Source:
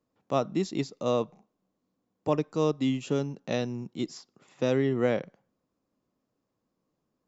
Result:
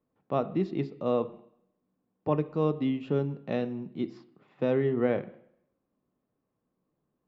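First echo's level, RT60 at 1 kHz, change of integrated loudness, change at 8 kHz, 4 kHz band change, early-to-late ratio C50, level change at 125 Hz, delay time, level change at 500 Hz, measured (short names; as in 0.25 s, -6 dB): none, 0.70 s, -0.5 dB, n/a, -9.0 dB, 17.0 dB, 0.0 dB, none, -0.5 dB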